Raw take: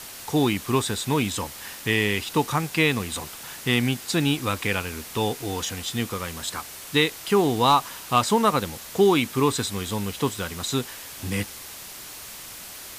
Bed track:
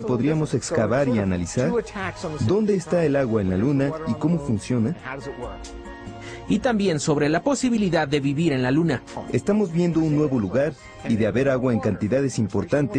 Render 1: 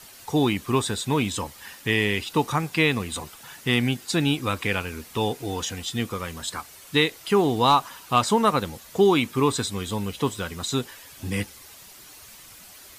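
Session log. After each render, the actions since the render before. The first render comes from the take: denoiser 9 dB, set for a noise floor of -40 dBFS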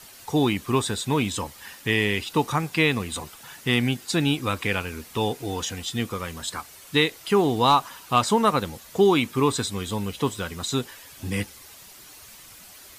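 nothing audible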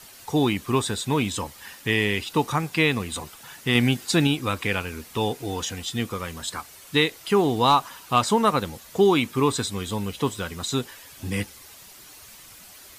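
3.75–4.27 gain +3 dB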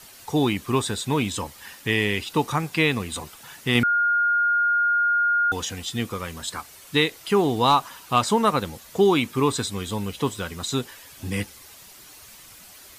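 3.83–5.52 bleep 1420 Hz -17.5 dBFS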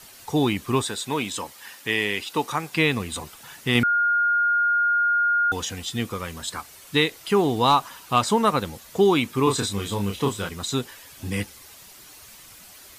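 0.83–2.73 HPF 360 Hz 6 dB/oct; 9.44–10.49 doubler 30 ms -4 dB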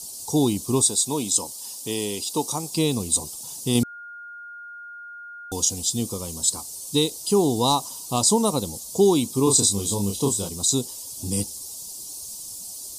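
EQ curve 100 Hz 0 dB, 280 Hz +2 dB, 970 Hz -3 dB, 1700 Hz -27 dB, 4800 Hz +9 dB, 9200 Hz +15 dB, 13000 Hz +7 dB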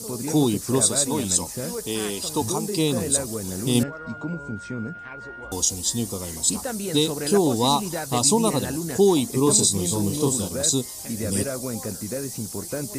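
add bed track -9.5 dB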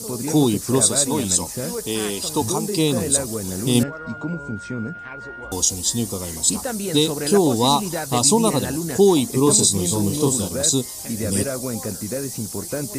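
gain +3 dB; limiter -3 dBFS, peak gain reduction 1.5 dB

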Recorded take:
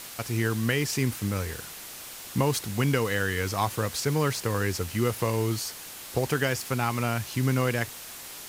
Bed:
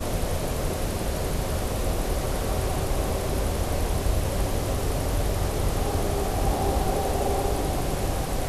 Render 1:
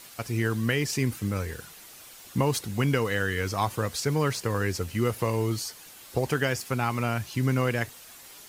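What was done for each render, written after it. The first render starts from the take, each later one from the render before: denoiser 8 dB, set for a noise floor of -42 dBFS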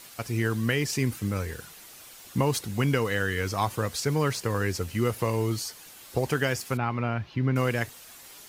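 6.77–7.56 air absorption 300 m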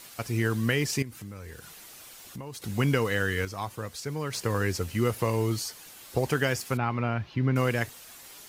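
1.02–2.62 compressor 3:1, threshold -41 dBFS; 3.45–4.33 gain -7.5 dB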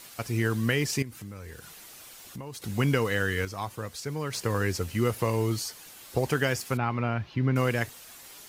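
nothing audible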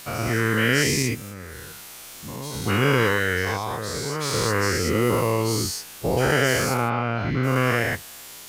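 spectral dilation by 0.24 s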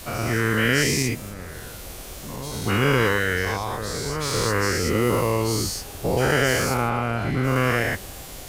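add bed -14 dB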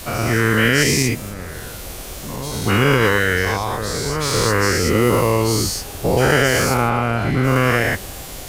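gain +5.5 dB; limiter -3 dBFS, peak gain reduction 2.5 dB

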